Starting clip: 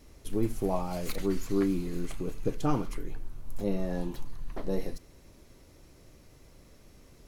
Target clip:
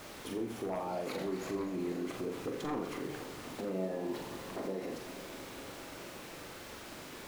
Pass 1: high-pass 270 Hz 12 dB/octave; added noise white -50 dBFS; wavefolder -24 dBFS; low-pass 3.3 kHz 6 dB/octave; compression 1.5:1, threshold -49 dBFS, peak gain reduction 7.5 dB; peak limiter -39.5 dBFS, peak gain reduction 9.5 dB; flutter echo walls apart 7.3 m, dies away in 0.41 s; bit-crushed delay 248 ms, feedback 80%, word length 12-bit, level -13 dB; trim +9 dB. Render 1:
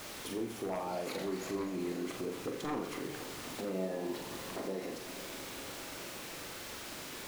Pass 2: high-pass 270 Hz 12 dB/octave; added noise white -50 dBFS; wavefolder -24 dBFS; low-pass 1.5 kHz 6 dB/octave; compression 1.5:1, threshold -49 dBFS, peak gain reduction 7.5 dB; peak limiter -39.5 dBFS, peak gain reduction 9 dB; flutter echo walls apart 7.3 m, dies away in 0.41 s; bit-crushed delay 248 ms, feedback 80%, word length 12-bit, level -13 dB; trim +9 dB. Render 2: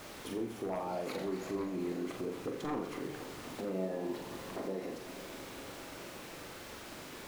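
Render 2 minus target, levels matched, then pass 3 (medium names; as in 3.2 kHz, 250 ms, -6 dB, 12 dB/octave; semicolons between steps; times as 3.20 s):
compression: peak gain reduction +3 dB
high-pass 270 Hz 12 dB/octave; added noise white -50 dBFS; wavefolder -24 dBFS; low-pass 1.5 kHz 6 dB/octave; compression 1.5:1, threshold -40.5 dBFS, peak gain reduction 5 dB; peak limiter -39.5 dBFS, peak gain reduction 12 dB; flutter echo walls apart 7.3 m, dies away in 0.41 s; bit-crushed delay 248 ms, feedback 80%, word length 12-bit, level -13 dB; trim +9 dB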